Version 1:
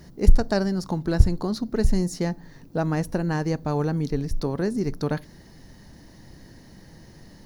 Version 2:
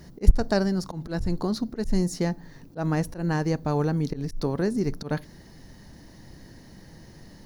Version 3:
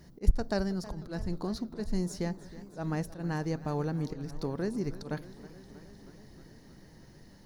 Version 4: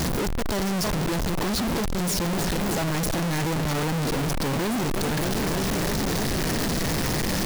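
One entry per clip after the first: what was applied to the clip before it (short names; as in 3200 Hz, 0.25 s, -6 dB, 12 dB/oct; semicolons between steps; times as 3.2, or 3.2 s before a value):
auto swell 0.109 s
warbling echo 0.316 s, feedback 73%, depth 104 cents, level -17 dB; gain -7.5 dB
infinite clipping; gain +9 dB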